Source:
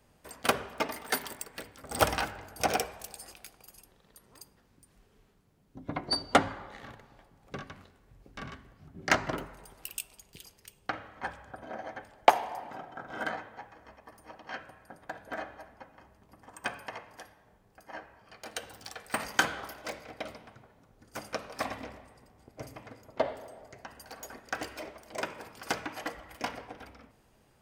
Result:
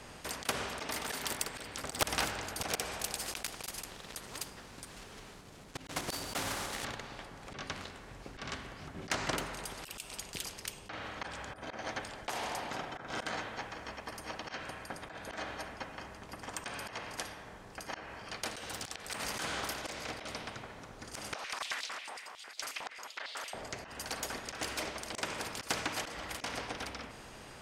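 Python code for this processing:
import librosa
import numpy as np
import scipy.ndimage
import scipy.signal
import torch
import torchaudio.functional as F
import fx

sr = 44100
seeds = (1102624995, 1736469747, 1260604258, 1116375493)

y = fx.block_float(x, sr, bits=3, at=(3.2, 6.86))
y = fx.filter_held_highpass(y, sr, hz=11.0, low_hz=830.0, high_hz=4100.0, at=(21.35, 23.54))
y = scipy.signal.sosfilt(scipy.signal.butter(2, 8500.0, 'lowpass', fs=sr, output='sos'), y)
y = fx.auto_swell(y, sr, attack_ms=184.0)
y = fx.spectral_comp(y, sr, ratio=2.0)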